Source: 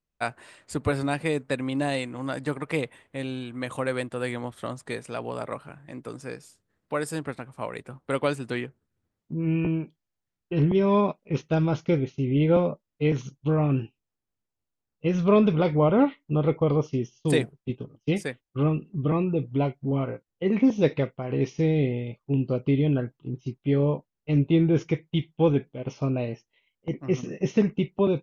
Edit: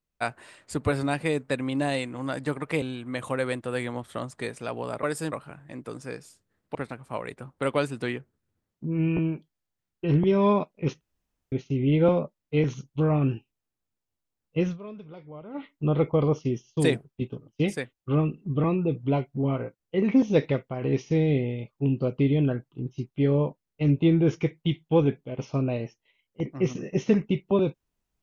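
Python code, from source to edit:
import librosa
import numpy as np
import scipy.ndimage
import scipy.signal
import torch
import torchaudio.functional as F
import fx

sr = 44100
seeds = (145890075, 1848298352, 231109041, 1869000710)

y = fx.edit(x, sr, fx.cut(start_s=2.82, length_s=0.48),
    fx.move(start_s=6.94, length_s=0.29, to_s=5.51),
    fx.room_tone_fill(start_s=11.49, length_s=0.51),
    fx.fade_down_up(start_s=15.11, length_s=1.06, db=-22.0, fade_s=0.15), tone=tone)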